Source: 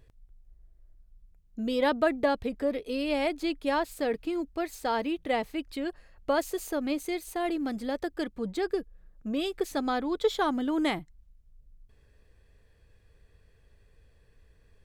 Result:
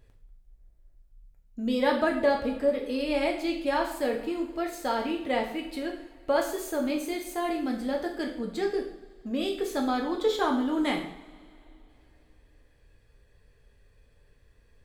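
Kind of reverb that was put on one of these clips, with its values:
coupled-rooms reverb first 0.58 s, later 3.1 s, from −22 dB, DRR 0.5 dB
level −1.5 dB

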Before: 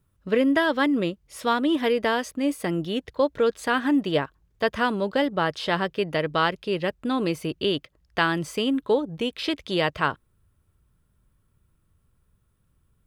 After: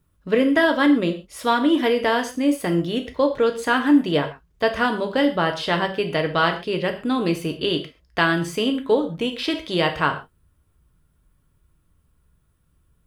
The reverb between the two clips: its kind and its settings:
reverb whose tail is shaped and stops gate 160 ms falling, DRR 5 dB
level +2 dB

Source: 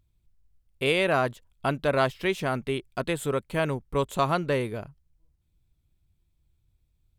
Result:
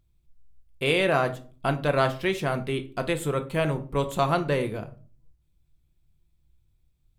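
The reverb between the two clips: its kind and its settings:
rectangular room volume 280 cubic metres, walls furnished, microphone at 0.78 metres

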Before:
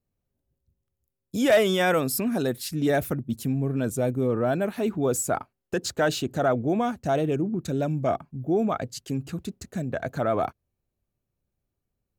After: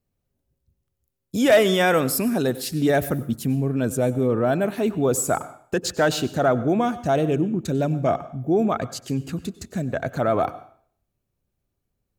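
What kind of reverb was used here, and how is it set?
dense smooth reverb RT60 0.53 s, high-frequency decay 0.95×, pre-delay 85 ms, DRR 16 dB
level +3.5 dB

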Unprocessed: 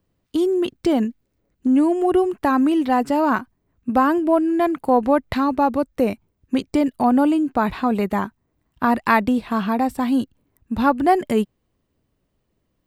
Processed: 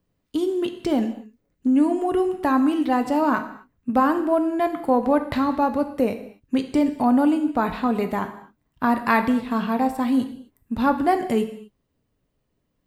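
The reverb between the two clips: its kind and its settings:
reverb whose tail is shaped and stops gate 280 ms falling, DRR 7 dB
level −3 dB

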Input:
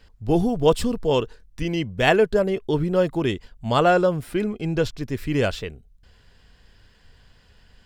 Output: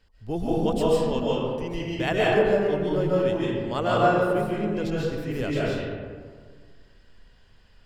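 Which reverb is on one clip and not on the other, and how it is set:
comb and all-pass reverb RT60 1.8 s, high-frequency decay 0.45×, pre-delay 105 ms, DRR −6.5 dB
level −10 dB

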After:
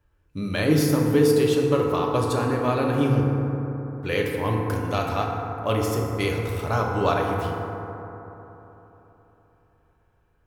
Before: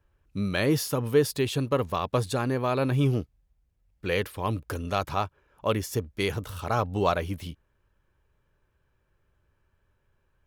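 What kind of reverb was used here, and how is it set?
feedback delay network reverb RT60 3.6 s, high-frequency decay 0.3×, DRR −1 dB

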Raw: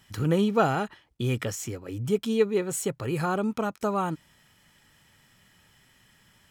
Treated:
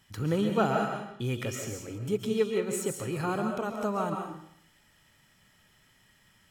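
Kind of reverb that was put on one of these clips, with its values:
comb and all-pass reverb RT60 0.68 s, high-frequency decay 0.95×, pre-delay 95 ms, DRR 3 dB
level −4.5 dB

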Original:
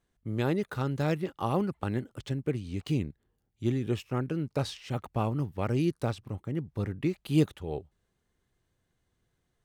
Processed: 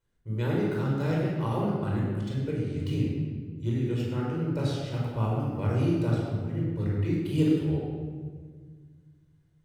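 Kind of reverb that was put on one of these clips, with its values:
rectangular room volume 1,900 cubic metres, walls mixed, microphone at 4.8 metres
level −8 dB

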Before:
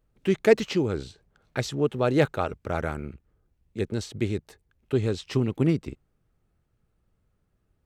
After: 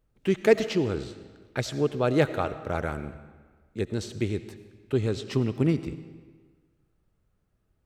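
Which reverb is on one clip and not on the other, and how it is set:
comb and all-pass reverb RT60 1.5 s, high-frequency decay 0.85×, pre-delay 45 ms, DRR 12.5 dB
level −1 dB

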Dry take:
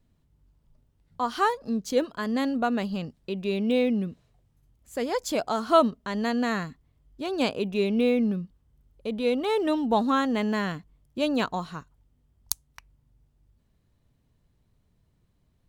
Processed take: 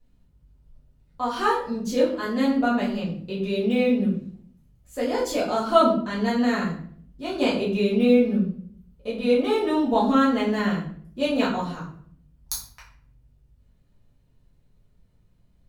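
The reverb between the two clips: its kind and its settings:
rectangular room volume 72 cubic metres, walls mixed, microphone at 1.9 metres
level −6.5 dB

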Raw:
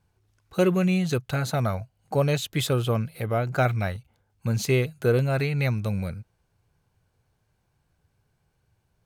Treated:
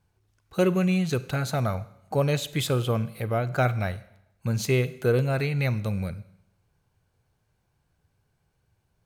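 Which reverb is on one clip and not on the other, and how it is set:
four-comb reverb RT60 0.81 s, combs from 32 ms, DRR 16 dB
level −1 dB

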